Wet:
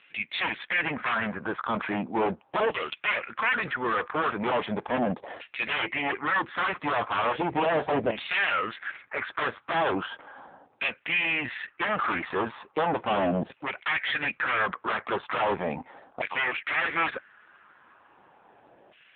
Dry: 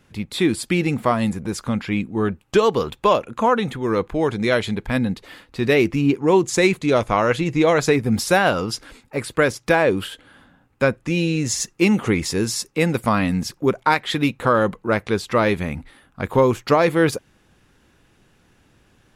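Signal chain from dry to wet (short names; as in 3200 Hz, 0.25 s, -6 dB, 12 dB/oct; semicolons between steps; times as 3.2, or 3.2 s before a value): sine folder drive 12 dB, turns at -4.5 dBFS; LFO band-pass saw down 0.37 Hz 640–2700 Hz; hard clip -20.5 dBFS, distortion -6 dB; AMR-NB 5.9 kbps 8000 Hz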